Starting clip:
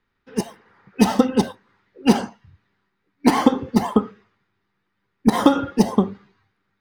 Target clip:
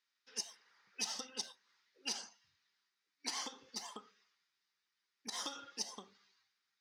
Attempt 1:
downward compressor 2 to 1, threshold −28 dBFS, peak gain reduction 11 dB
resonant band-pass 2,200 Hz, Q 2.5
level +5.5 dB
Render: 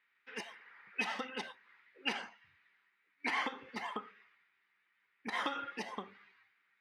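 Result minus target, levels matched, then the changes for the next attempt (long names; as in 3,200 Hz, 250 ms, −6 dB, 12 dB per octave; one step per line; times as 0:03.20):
2,000 Hz band +10.5 dB
change: resonant band-pass 5,600 Hz, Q 2.5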